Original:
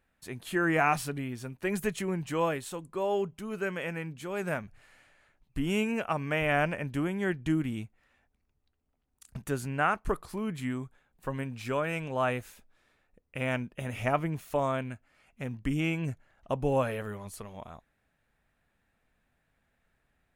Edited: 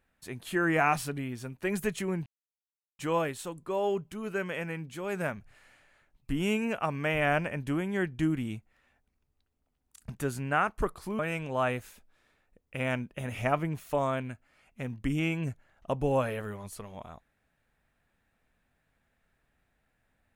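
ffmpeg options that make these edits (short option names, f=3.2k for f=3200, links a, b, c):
-filter_complex "[0:a]asplit=3[a][b][c];[a]atrim=end=2.26,asetpts=PTS-STARTPTS,afade=t=out:st=2.256:d=0.004:c=hsin,apad=pad_dur=0.73[d];[b]atrim=start=2.26:end=10.462,asetpts=PTS-STARTPTS,afade=t=in:d=0.004:c=hsin[e];[c]atrim=start=11.798[f];[d][e]concat=n=2:v=0:a=1[g];[g][f]acrossfade=d=0.004:c1=hsin:c2=hsin"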